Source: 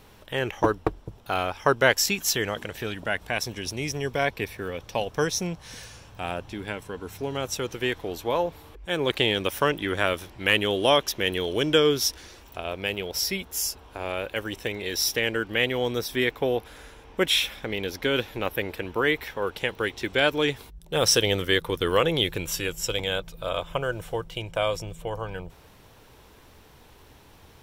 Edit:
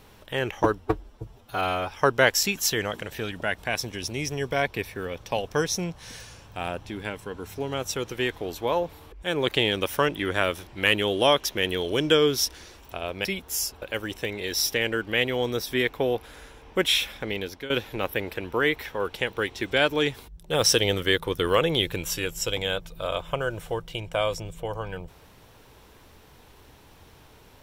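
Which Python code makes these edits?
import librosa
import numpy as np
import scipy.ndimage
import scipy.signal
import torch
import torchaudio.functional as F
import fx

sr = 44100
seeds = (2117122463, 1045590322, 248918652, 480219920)

y = fx.edit(x, sr, fx.stretch_span(start_s=0.8, length_s=0.74, factor=1.5),
    fx.cut(start_s=12.88, length_s=0.4),
    fx.cut(start_s=13.85, length_s=0.39),
    fx.fade_out_to(start_s=17.77, length_s=0.35, floor_db=-15.5), tone=tone)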